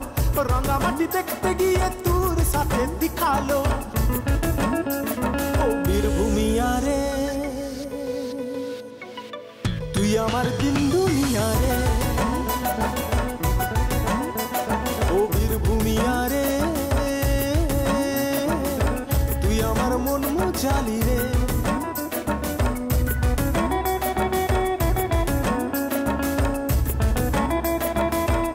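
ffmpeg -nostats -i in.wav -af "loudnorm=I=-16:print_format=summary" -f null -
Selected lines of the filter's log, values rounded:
Input Integrated:    -23.1 LUFS
Input True Peak:     -12.2 dBTP
Input LRA:             1.9 LU
Input Threshold:     -33.2 LUFS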